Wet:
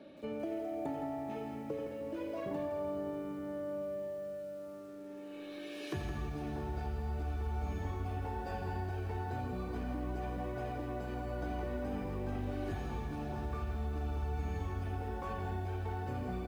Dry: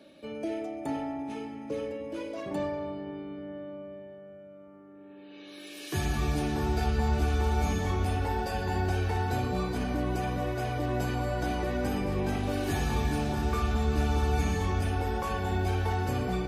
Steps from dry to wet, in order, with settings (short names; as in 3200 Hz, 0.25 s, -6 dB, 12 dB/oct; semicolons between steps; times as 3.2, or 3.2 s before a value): LPF 1600 Hz 6 dB/oct; compressor 10:1, threshold -37 dBFS, peak gain reduction 15 dB; echo 85 ms -11.5 dB; lo-fi delay 0.165 s, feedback 35%, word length 10-bit, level -8.5 dB; gain +1.5 dB